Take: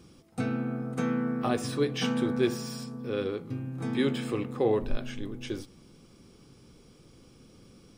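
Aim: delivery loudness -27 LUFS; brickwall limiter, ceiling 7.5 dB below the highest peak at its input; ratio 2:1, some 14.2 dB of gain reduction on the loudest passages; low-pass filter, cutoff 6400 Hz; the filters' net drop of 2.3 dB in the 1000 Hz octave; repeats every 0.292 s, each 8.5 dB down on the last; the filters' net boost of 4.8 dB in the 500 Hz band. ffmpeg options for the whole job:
-af "lowpass=6.4k,equalizer=f=500:t=o:g=7,equalizer=f=1k:t=o:g=-6.5,acompressor=threshold=-44dB:ratio=2,alimiter=level_in=8dB:limit=-24dB:level=0:latency=1,volume=-8dB,aecho=1:1:292|584|876|1168:0.376|0.143|0.0543|0.0206,volume=14.5dB"

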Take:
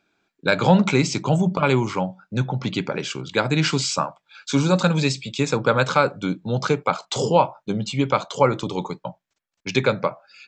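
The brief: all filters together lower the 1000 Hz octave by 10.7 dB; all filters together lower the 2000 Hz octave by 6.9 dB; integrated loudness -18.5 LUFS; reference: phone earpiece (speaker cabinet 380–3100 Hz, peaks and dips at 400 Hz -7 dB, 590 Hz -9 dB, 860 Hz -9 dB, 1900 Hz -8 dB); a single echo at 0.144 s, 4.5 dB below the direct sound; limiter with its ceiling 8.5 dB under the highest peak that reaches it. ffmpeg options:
-af "equalizer=f=1k:t=o:g=-7,equalizer=f=2k:t=o:g=-3,alimiter=limit=-12.5dB:level=0:latency=1,highpass=380,equalizer=f=400:t=q:w=4:g=-7,equalizer=f=590:t=q:w=4:g=-9,equalizer=f=860:t=q:w=4:g=-9,equalizer=f=1.9k:t=q:w=4:g=-8,lowpass=f=3.1k:w=0.5412,lowpass=f=3.1k:w=1.3066,aecho=1:1:144:0.596,volume=14.5dB"

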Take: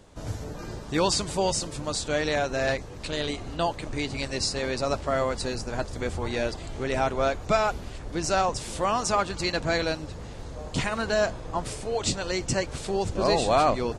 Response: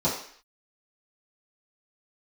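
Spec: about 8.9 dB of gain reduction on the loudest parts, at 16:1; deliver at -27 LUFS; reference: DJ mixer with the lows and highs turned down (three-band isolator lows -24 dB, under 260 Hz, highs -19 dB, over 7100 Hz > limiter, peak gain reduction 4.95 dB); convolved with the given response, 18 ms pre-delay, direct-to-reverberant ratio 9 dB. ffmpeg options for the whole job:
-filter_complex "[0:a]acompressor=threshold=-26dB:ratio=16,asplit=2[a][b];[1:a]atrim=start_sample=2205,adelay=18[c];[b][c]afir=irnorm=-1:irlink=0,volume=-21.5dB[d];[a][d]amix=inputs=2:normalize=0,acrossover=split=260 7100:gain=0.0631 1 0.112[e][f][g];[e][f][g]amix=inputs=3:normalize=0,volume=7dB,alimiter=limit=-15dB:level=0:latency=1"

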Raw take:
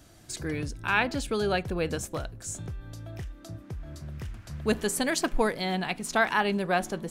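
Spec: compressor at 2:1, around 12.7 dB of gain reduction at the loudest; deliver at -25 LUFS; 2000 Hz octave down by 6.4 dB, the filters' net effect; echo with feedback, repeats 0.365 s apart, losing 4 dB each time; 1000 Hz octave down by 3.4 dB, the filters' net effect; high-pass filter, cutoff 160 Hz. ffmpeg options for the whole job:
-af "highpass=160,equalizer=f=1k:t=o:g=-3,equalizer=f=2k:t=o:g=-7.5,acompressor=threshold=-46dB:ratio=2,aecho=1:1:365|730|1095|1460|1825|2190|2555|2920|3285:0.631|0.398|0.25|0.158|0.0994|0.0626|0.0394|0.0249|0.0157,volume=15.5dB"

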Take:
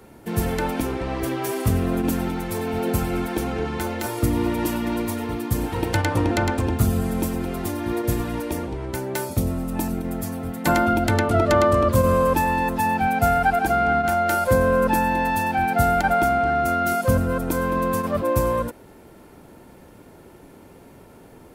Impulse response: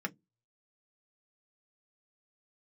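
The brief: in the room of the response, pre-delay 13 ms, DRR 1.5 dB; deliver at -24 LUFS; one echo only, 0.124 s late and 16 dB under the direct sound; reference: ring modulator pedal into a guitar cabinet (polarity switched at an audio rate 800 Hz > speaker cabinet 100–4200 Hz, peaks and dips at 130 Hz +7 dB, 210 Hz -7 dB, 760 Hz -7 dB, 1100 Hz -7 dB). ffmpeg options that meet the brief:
-filter_complex "[0:a]aecho=1:1:124:0.158,asplit=2[a][b];[1:a]atrim=start_sample=2205,adelay=13[c];[b][c]afir=irnorm=-1:irlink=0,volume=-5dB[d];[a][d]amix=inputs=2:normalize=0,aeval=exprs='val(0)*sgn(sin(2*PI*800*n/s))':c=same,highpass=100,equalizer=f=130:t=q:w=4:g=7,equalizer=f=210:t=q:w=4:g=-7,equalizer=f=760:t=q:w=4:g=-7,equalizer=f=1.1k:t=q:w=4:g=-7,lowpass=f=4.2k:w=0.5412,lowpass=f=4.2k:w=1.3066,volume=-2.5dB"

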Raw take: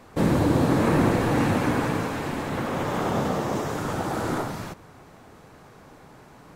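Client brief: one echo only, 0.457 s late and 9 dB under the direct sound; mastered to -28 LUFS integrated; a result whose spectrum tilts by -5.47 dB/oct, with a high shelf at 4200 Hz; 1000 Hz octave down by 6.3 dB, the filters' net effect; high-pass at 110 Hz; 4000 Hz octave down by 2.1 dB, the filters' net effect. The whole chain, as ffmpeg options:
-af "highpass=110,equalizer=f=1k:t=o:g=-8.5,equalizer=f=4k:t=o:g=-6.5,highshelf=f=4.2k:g=7.5,aecho=1:1:457:0.355,volume=-2dB"

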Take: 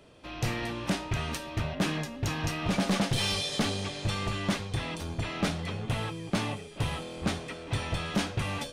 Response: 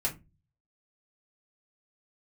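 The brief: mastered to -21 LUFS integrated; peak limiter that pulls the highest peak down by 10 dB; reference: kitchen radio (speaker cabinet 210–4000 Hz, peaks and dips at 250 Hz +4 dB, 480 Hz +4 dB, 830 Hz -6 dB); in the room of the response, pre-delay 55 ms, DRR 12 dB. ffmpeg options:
-filter_complex "[0:a]alimiter=level_in=8dB:limit=-24dB:level=0:latency=1,volume=-8dB,asplit=2[a][b];[1:a]atrim=start_sample=2205,adelay=55[c];[b][c]afir=irnorm=-1:irlink=0,volume=-17dB[d];[a][d]amix=inputs=2:normalize=0,highpass=210,equalizer=f=250:t=q:w=4:g=4,equalizer=f=480:t=q:w=4:g=4,equalizer=f=830:t=q:w=4:g=-6,lowpass=f=4k:w=0.5412,lowpass=f=4k:w=1.3066,volume=19.5dB"

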